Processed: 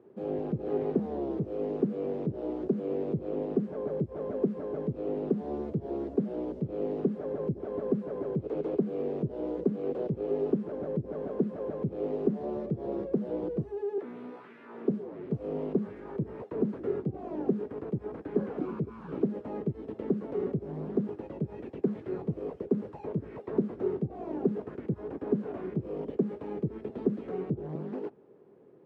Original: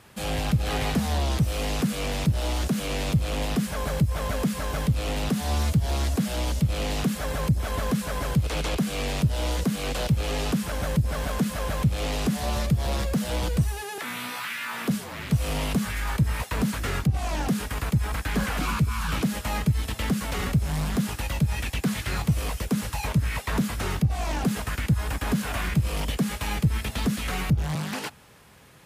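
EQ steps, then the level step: high-pass 160 Hz 12 dB/octave; resonant low-pass 390 Hz, resonance Q 4.5; tilt EQ +3 dB/octave; 0.0 dB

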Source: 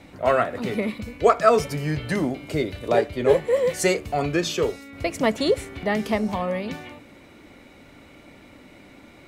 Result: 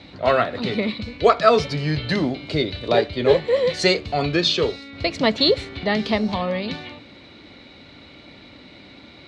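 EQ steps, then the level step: high-pass 56 Hz; resonant low-pass 4.1 kHz, resonance Q 4.6; bass shelf 190 Hz +3.5 dB; +1.0 dB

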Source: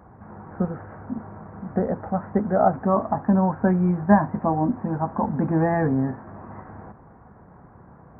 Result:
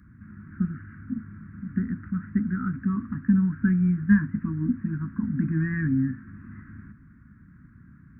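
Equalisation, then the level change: elliptic band-stop 270–1500 Hz, stop band 60 dB; 0.0 dB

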